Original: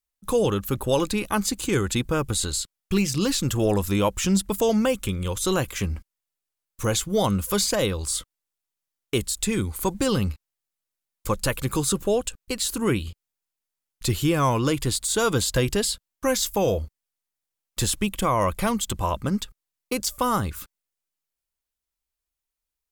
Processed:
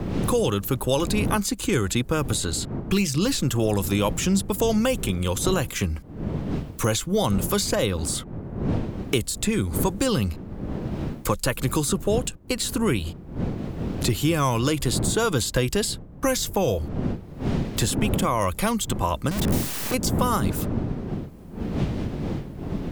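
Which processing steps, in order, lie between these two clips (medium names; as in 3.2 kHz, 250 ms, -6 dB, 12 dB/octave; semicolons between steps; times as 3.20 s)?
19.31–19.94 s: one-bit comparator; wind noise 200 Hz -32 dBFS; three bands compressed up and down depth 70%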